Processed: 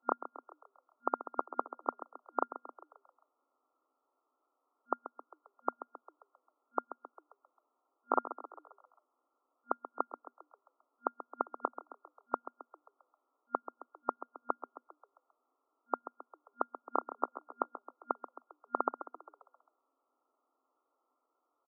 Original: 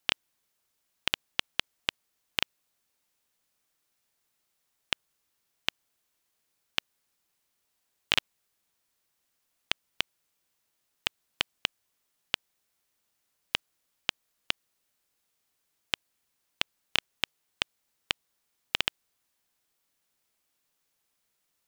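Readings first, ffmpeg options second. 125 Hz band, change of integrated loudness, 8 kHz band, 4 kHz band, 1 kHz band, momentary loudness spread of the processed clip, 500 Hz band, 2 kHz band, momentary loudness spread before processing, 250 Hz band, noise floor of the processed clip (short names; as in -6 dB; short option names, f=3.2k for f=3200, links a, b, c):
under -30 dB, -6.0 dB, under -30 dB, under -40 dB, +8.5 dB, 20 LU, +7.0 dB, under -20 dB, 5 LU, +4.5 dB, -83 dBFS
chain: -filter_complex "[0:a]asplit=7[a][b][c][d][e][f][g];[b]adelay=133,afreqshift=99,volume=-12.5dB[h];[c]adelay=266,afreqshift=198,volume=-17.5dB[i];[d]adelay=399,afreqshift=297,volume=-22.6dB[j];[e]adelay=532,afreqshift=396,volume=-27.6dB[k];[f]adelay=665,afreqshift=495,volume=-32.6dB[l];[g]adelay=798,afreqshift=594,volume=-37.7dB[m];[a][h][i][j][k][l][m]amix=inputs=7:normalize=0,afftfilt=real='re*between(b*sr/4096,240,1400)':imag='im*between(b*sr/4096,240,1400)':win_size=4096:overlap=0.75,crystalizer=i=5.5:c=0,volume=6dB"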